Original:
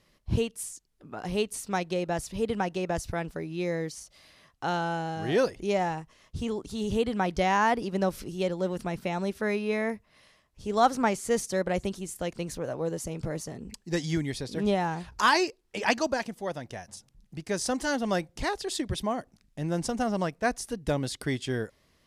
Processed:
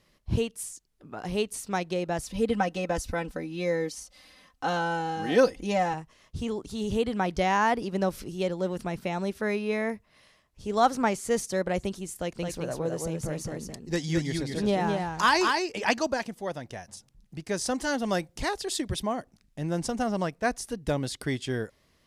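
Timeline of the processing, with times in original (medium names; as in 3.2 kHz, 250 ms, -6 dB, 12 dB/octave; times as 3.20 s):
2.26–5.94 s: comb 3.9 ms, depth 78%
12.20–15.84 s: delay 215 ms -4 dB
17.99–19.00 s: treble shelf 5.7 kHz +4.5 dB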